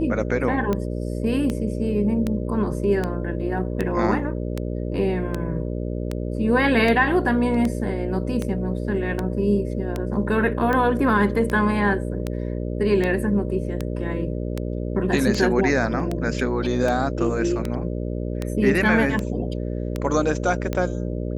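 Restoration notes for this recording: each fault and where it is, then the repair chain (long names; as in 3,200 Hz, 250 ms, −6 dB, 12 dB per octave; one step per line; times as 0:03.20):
mains buzz 60 Hz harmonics 10 −27 dBFS
scratch tick 78 rpm −12 dBFS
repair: click removal
hum removal 60 Hz, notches 10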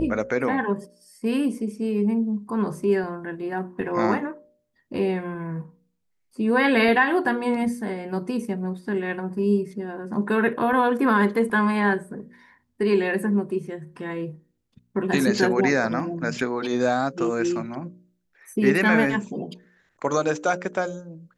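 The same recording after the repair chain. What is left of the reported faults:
none of them is left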